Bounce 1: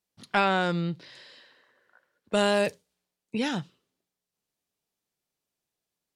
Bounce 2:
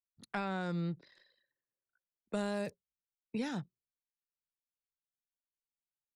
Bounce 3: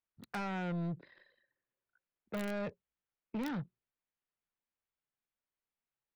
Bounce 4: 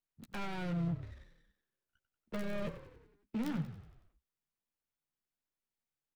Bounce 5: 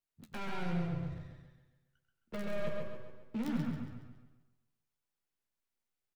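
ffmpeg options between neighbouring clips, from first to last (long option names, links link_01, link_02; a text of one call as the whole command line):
ffmpeg -i in.wav -filter_complex "[0:a]anlmdn=0.0251,equalizer=frequency=3000:width=4.5:gain=-9.5,acrossover=split=250[link_01][link_02];[link_02]acompressor=threshold=-33dB:ratio=2.5[link_03];[link_01][link_03]amix=inputs=2:normalize=0,volume=-6dB" out.wav
ffmpeg -i in.wav -filter_complex "[0:a]acrossover=split=3200[link_01][link_02];[link_01]asoftclip=type=tanh:threshold=-38.5dB[link_03];[link_02]acrusher=bits=6:mix=0:aa=0.000001[link_04];[link_03][link_04]amix=inputs=2:normalize=0,volume=5dB" out.wav
ffmpeg -i in.wav -filter_complex "[0:a]asplit=2[link_01][link_02];[link_02]adelay=13,volume=-7dB[link_03];[link_01][link_03]amix=inputs=2:normalize=0,asplit=7[link_04][link_05][link_06][link_07][link_08][link_09][link_10];[link_05]adelay=93,afreqshift=-34,volume=-12dB[link_11];[link_06]adelay=186,afreqshift=-68,volume=-17dB[link_12];[link_07]adelay=279,afreqshift=-102,volume=-22.1dB[link_13];[link_08]adelay=372,afreqshift=-136,volume=-27.1dB[link_14];[link_09]adelay=465,afreqshift=-170,volume=-32.1dB[link_15];[link_10]adelay=558,afreqshift=-204,volume=-37.2dB[link_16];[link_04][link_11][link_12][link_13][link_14][link_15][link_16]amix=inputs=7:normalize=0,acrossover=split=360[link_17][link_18];[link_18]aeval=exprs='max(val(0),0)':channel_layout=same[link_19];[link_17][link_19]amix=inputs=2:normalize=0,volume=1dB" out.wav
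ffmpeg -i in.wav -filter_complex "[0:a]asplit=2[link_01][link_02];[link_02]adelay=131,lowpass=frequency=3500:poles=1,volume=-3dB,asplit=2[link_03][link_04];[link_04]adelay=131,lowpass=frequency=3500:poles=1,volume=0.42,asplit=2[link_05][link_06];[link_06]adelay=131,lowpass=frequency=3500:poles=1,volume=0.42,asplit=2[link_07][link_08];[link_08]adelay=131,lowpass=frequency=3500:poles=1,volume=0.42,asplit=2[link_09][link_10];[link_10]adelay=131,lowpass=frequency=3500:poles=1,volume=0.42[link_11];[link_03][link_05][link_07][link_09][link_11]amix=inputs=5:normalize=0[link_12];[link_01][link_12]amix=inputs=2:normalize=0,flanger=delay=9.7:depth=4:regen=-56:speed=1:shape=triangular,asplit=2[link_13][link_14];[link_14]aecho=0:1:139|278|417|556|695:0.316|0.139|0.0612|0.0269|0.0119[link_15];[link_13][link_15]amix=inputs=2:normalize=0,volume=3dB" out.wav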